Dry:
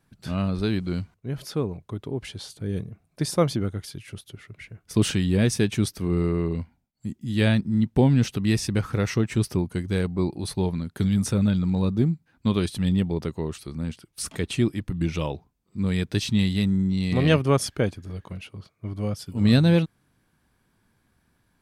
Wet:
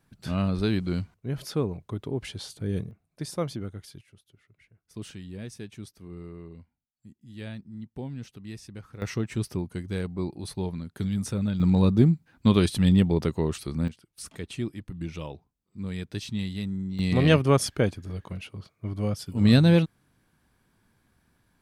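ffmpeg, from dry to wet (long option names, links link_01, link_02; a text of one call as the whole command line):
ffmpeg -i in.wav -af "asetnsamples=nb_out_samples=441:pad=0,asendcmd='2.91 volume volume -8.5dB;4.01 volume volume -18dB;9.02 volume volume -6dB;11.6 volume volume 3dB;13.88 volume volume -9dB;16.99 volume volume 0dB',volume=-0.5dB" out.wav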